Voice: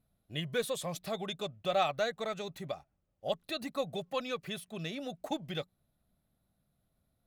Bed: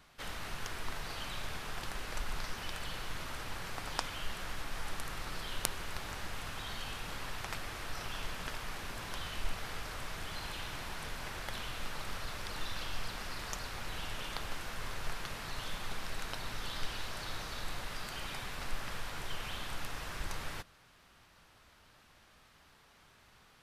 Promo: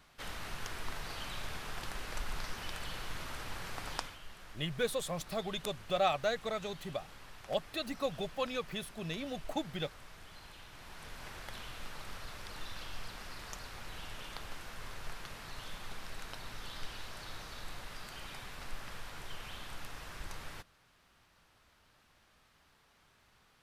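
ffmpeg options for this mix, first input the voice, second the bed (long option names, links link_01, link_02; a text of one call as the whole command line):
ffmpeg -i stem1.wav -i stem2.wav -filter_complex "[0:a]adelay=4250,volume=-0.5dB[link_01];[1:a]volume=5.5dB,afade=type=out:start_time=3.92:duration=0.26:silence=0.298538,afade=type=in:start_time=10.71:duration=0.55:silence=0.473151[link_02];[link_01][link_02]amix=inputs=2:normalize=0" out.wav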